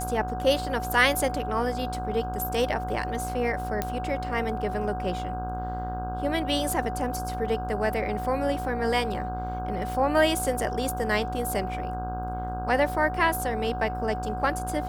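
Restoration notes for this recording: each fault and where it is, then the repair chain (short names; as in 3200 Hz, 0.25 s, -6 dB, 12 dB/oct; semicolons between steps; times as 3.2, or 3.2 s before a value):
buzz 60 Hz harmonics 27 -34 dBFS
tone 740 Hz -32 dBFS
3.82 pop -12 dBFS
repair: de-click; de-hum 60 Hz, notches 27; notch 740 Hz, Q 30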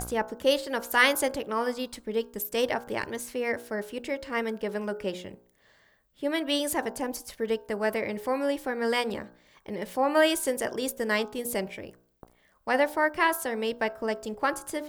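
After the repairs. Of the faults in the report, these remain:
none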